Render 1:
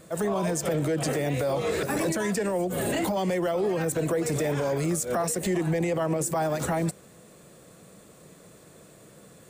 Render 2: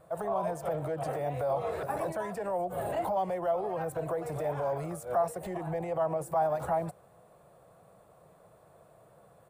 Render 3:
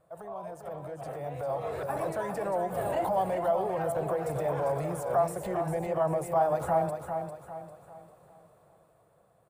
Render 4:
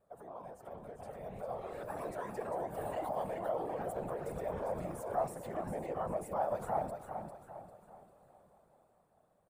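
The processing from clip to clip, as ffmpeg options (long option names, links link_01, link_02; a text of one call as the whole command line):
ffmpeg -i in.wav -af "firequalizer=gain_entry='entry(120,0);entry(240,-11);entry(700,9);entry(1900,-7);entry(6800,-17);entry(10000,-7)':delay=0.05:min_phase=1,volume=-6.5dB" out.wav
ffmpeg -i in.wav -filter_complex "[0:a]dynaudnorm=framelen=290:gausssize=11:maxgain=11dB,asplit=2[link_01][link_02];[link_02]aecho=0:1:399|798|1197|1596|1995:0.447|0.174|0.0679|0.0265|0.0103[link_03];[link_01][link_03]amix=inputs=2:normalize=0,volume=-9dB" out.wav
ffmpeg -i in.wav -filter_complex "[0:a]afftfilt=real='hypot(re,im)*cos(2*PI*random(0))':imag='hypot(re,im)*sin(2*PI*random(1))':win_size=512:overlap=0.75,asplit=2[link_01][link_02];[link_02]adelay=605,lowpass=frequency=2000:poles=1,volume=-23.5dB,asplit=2[link_03][link_04];[link_04]adelay=605,lowpass=frequency=2000:poles=1,volume=0.54,asplit=2[link_05][link_06];[link_06]adelay=605,lowpass=frequency=2000:poles=1,volume=0.54,asplit=2[link_07][link_08];[link_08]adelay=605,lowpass=frequency=2000:poles=1,volume=0.54[link_09];[link_01][link_03][link_05][link_07][link_09]amix=inputs=5:normalize=0,volume=-2.5dB" out.wav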